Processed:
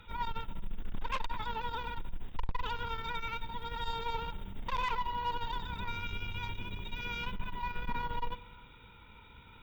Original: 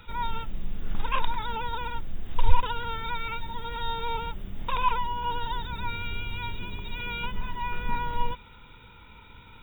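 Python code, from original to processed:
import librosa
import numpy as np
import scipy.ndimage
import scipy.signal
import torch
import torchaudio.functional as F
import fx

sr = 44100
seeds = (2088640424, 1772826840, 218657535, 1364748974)

y = fx.rev_schroeder(x, sr, rt60_s=1.6, comb_ms=31, drr_db=14.0)
y = fx.tube_stage(y, sr, drive_db=24.0, bias=0.55)
y = y * 10.0 ** (-2.5 / 20.0)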